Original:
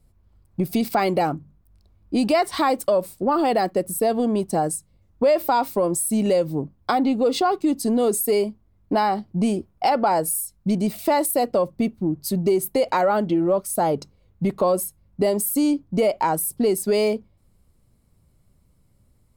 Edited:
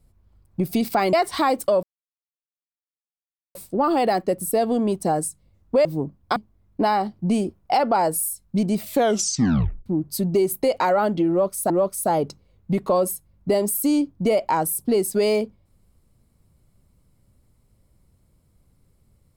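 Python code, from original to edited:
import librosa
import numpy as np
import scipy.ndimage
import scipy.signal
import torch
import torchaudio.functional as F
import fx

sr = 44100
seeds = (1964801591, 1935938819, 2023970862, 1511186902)

y = fx.edit(x, sr, fx.cut(start_s=1.13, length_s=1.2),
    fx.insert_silence(at_s=3.03, length_s=1.72),
    fx.cut(start_s=5.33, length_s=1.1),
    fx.cut(start_s=6.94, length_s=1.54),
    fx.tape_stop(start_s=10.95, length_s=1.03),
    fx.repeat(start_s=13.42, length_s=0.4, count=2), tone=tone)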